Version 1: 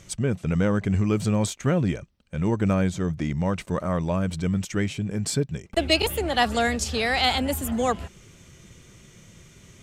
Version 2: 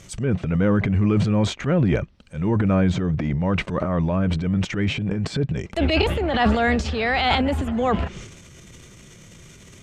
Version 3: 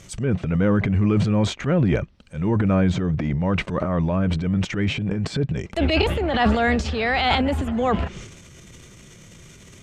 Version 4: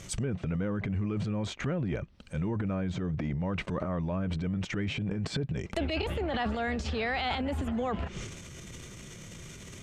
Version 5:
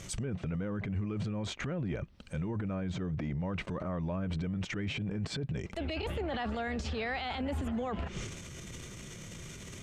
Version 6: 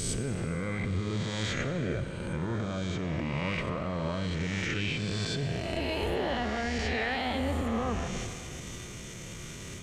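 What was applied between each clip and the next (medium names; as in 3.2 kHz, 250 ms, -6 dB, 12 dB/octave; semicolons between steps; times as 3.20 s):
transient shaper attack -7 dB, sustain +10 dB; low-pass that closes with the level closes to 2.8 kHz, closed at -23 dBFS; trim +3.5 dB
no audible change
compression 6:1, threshold -29 dBFS, peak gain reduction 14 dB
peak limiter -27.5 dBFS, peak gain reduction 10 dB
reverse spectral sustain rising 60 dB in 1.78 s; plate-style reverb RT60 2.7 s, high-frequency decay 0.95×, pre-delay 0 ms, DRR 8 dB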